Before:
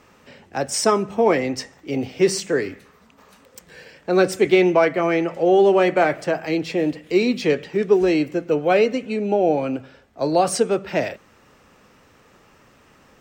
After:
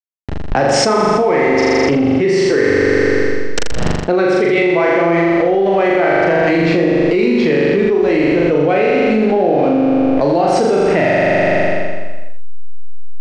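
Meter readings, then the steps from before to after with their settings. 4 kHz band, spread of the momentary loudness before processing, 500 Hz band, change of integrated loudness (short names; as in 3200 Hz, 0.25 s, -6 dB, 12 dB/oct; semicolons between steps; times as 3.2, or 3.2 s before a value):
+6.0 dB, 12 LU, +6.5 dB, +6.5 dB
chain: dynamic EQ 2000 Hz, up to +7 dB, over -44 dBFS, Q 6.1; backlash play -30 dBFS; air absorption 140 m; flutter echo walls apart 7.1 m, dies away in 1.3 s; fast leveller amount 100%; gain -4.5 dB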